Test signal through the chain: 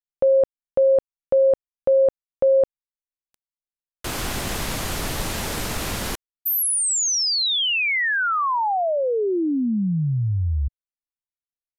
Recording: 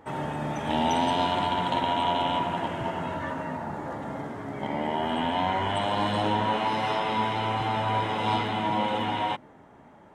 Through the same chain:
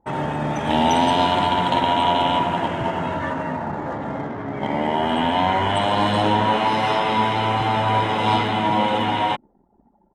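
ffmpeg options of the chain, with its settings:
-af "anlmdn=0.158,aresample=32000,aresample=44100,volume=2.24"

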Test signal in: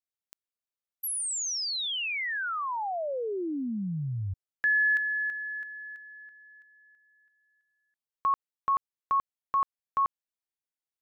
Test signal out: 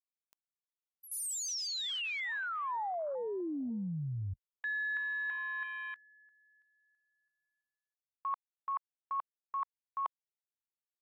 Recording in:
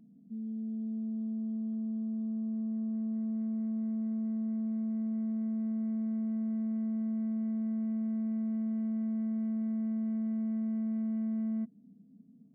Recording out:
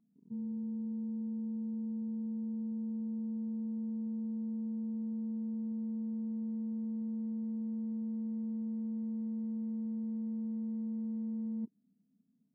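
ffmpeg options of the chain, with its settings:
-af "afwtdn=0.0126,equalizer=f=1000:w=2:g=6.5,areverse,acompressor=threshold=0.0178:ratio=6:attack=14:release=584:knee=1:detection=rms,areverse"

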